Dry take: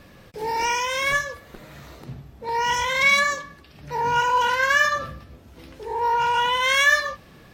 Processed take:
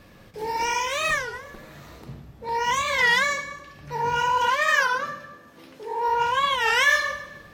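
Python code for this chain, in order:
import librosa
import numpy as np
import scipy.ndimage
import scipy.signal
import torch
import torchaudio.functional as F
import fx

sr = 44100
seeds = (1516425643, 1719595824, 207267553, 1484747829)

y = fx.highpass(x, sr, hz=200.0, slope=12, at=(4.49, 6.08))
y = fx.rev_plate(y, sr, seeds[0], rt60_s=1.2, hf_ratio=0.75, predelay_ms=0, drr_db=6.0)
y = fx.record_warp(y, sr, rpm=33.33, depth_cents=250.0)
y = F.gain(torch.from_numpy(y), -2.5).numpy()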